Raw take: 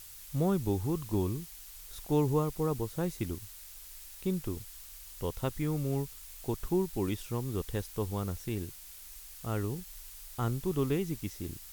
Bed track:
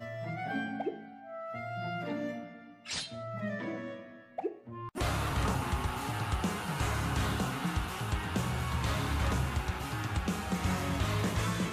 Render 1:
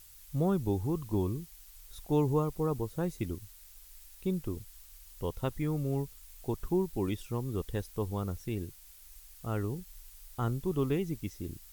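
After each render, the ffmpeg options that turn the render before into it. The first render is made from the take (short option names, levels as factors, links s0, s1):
-af "afftdn=nr=7:nf=-49"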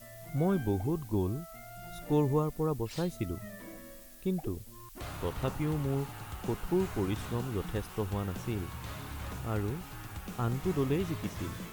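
-filter_complex "[1:a]volume=0.316[s0];[0:a][s0]amix=inputs=2:normalize=0"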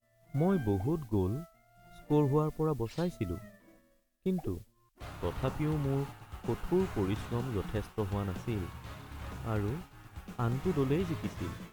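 -af "agate=range=0.0224:threshold=0.0158:ratio=3:detection=peak,highshelf=f=6500:g=-8.5"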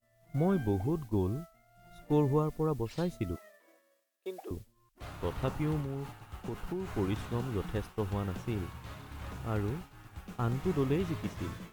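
-filter_complex "[0:a]asettb=1/sr,asplit=3[s0][s1][s2];[s0]atrim=end=3.364[s3];[s1]atrim=start=3.36:end=4.51,asetpts=PTS-STARTPTS,afade=t=in:d=0.004:c=qsin,afade=t=out:st=1.146:d=0.004:c=qsin,highpass=f=400:w=0.5412,highpass=f=400:w=1.3066[s4];[s2]atrim=start=4.506[s5];[s3][s4]acrossfade=d=0.004:c1=hsin:c2=qsin[s6];[s6][s5]acrossfade=d=0.004:c1=qsin:c2=hsin,asettb=1/sr,asplit=3[s7][s8][s9];[s7]atrim=end=5.804[s10];[s8]atrim=start=5.8:end=6.9,asetpts=PTS-STARTPTS,afade=t=in:d=0.004:c=qsin,afade=t=out:st=1.096:d=0.004:c=qsin,acompressor=threshold=0.0251:ratio=6:attack=3.2:release=140:knee=1:detection=peak[s11];[s9]atrim=start=6.896[s12];[s10][s11]acrossfade=d=0.004:c1=hsin:c2=qsin[s13];[s13][s12]acrossfade=d=0.004:c1=qsin:c2=hsin"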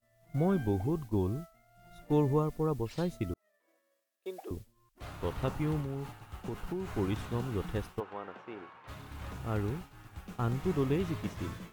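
-filter_complex "[0:a]asplit=3[s0][s1][s2];[s0]afade=t=out:st=7.99:d=0.02[s3];[s1]highpass=480,lowpass=2100,afade=t=in:st=7.99:d=0.02,afade=t=out:st=8.87:d=0.02[s4];[s2]afade=t=in:st=8.87:d=0.02[s5];[s3][s4][s5]amix=inputs=3:normalize=0,asplit=2[s6][s7];[s6]atrim=end=3.34,asetpts=PTS-STARTPTS,afade=t=out:st=3.336:d=0.004:c=hsin[s8];[s7]atrim=start=3.34,asetpts=PTS-STARTPTS,afade=t=in:d=1.03[s9];[s8][s9]concat=n=2:v=0:a=1"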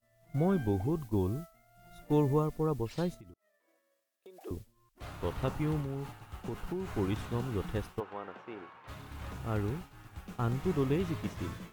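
-filter_complex "[0:a]asettb=1/sr,asplit=3[s0][s1][s2];[s0]atrim=end=1.004[s3];[s1]atrim=start=1:end=2.47,asetpts=PTS-STARTPTS,afade=t=in:d=0.004:c=qsin,afade=t=out:st=1.466:d=0.004:c=qsin,highshelf=f=8000:g=4.5[s4];[s2]atrim=start=2.466[s5];[s3][s4]acrossfade=d=0.004:c1=hsin:c2=qsin[s6];[s6][s5]acrossfade=d=0.004:c1=qsin:c2=hsin,asettb=1/sr,asplit=3[s7][s8][s9];[s7]atrim=end=3.144[s10];[s8]atrim=start=3.14:end=4.41,asetpts=PTS-STARTPTS,afade=t=in:d=0.004:c=qsin,afade=t=out:st=1.266:d=0.004:c=qsin,acompressor=threshold=0.00316:ratio=6:attack=3.2:release=140:knee=1:detection=peak[s11];[s9]atrim=start=4.406[s12];[s10][s11]acrossfade=d=0.004:c1=hsin:c2=qsin[s13];[s13][s12]acrossfade=d=0.004:c1=qsin:c2=hsin"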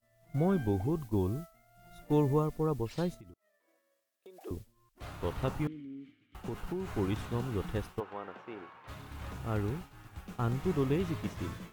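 -filter_complex "[0:a]asettb=1/sr,asplit=3[s0][s1][s2];[s0]atrim=end=5.674[s3];[s1]atrim=start=5.67:end=6.35,asetpts=PTS-STARTPTS,afade=t=in:d=0.004:c=qsin,afade=t=out:st=0.676:d=0.004:c=qsin,asplit=3[s4][s5][s6];[s4]bandpass=f=270:t=q:w=8,volume=1[s7];[s5]bandpass=f=2290:t=q:w=8,volume=0.501[s8];[s6]bandpass=f=3010:t=q:w=8,volume=0.355[s9];[s7][s8][s9]amix=inputs=3:normalize=0[s10];[s2]atrim=start=6.346[s11];[s3][s10]acrossfade=d=0.004:c1=hsin:c2=qsin[s12];[s12][s11]acrossfade=d=0.004:c1=qsin:c2=hsin"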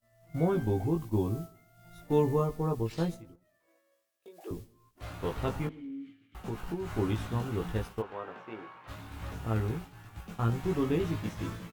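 -filter_complex "[0:a]asplit=2[s0][s1];[s1]adelay=18,volume=0.708[s2];[s0][s2]amix=inputs=2:normalize=0,asplit=2[s3][s4];[s4]adelay=113,lowpass=f=1600:p=1,volume=0.0708,asplit=2[s5][s6];[s6]adelay=113,lowpass=f=1600:p=1,volume=0.42,asplit=2[s7][s8];[s8]adelay=113,lowpass=f=1600:p=1,volume=0.42[s9];[s3][s5][s7][s9]amix=inputs=4:normalize=0"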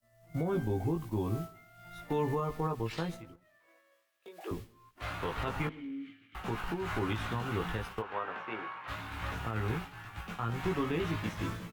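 -filter_complex "[0:a]acrossover=split=130|900|3500[s0][s1][s2][s3];[s2]dynaudnorm=f=790:g=3:m=3.16[s4];[s0][s1][s4][s3]amix=inputs=4:normalize=0,alimiter=limit=0.0708:level=0:latency=1:release=161"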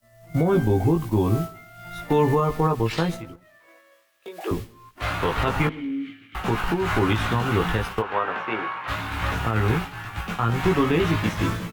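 -af "volume=3.98"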